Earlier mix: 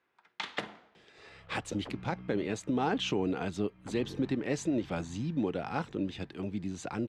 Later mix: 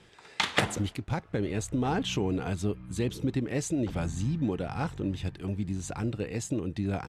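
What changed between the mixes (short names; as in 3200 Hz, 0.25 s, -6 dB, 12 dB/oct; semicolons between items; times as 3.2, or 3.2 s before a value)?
speech: entry -0.95 s; first sound +9.5 dB; master: remove three-band isolator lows -13 dB, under 170 Hz, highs -14 dB, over 5900 Hz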